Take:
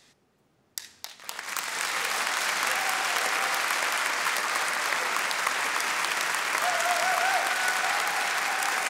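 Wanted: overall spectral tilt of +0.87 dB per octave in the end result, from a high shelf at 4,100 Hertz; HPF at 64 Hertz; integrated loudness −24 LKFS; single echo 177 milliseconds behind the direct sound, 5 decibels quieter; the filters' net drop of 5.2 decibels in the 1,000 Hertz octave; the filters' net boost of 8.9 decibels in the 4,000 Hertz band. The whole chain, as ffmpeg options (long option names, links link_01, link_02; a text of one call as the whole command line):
ffmpeg -i in.wav -af "highpass=64,equalizer=frequency=1000:width_type=o:gain=-8.5,equalizer=frequency=4000:width_type=o:gain=8,highshelf=frequency=4100:gain=6.5,aecho=1:1:177:0.562,volume=-3dB" out.wav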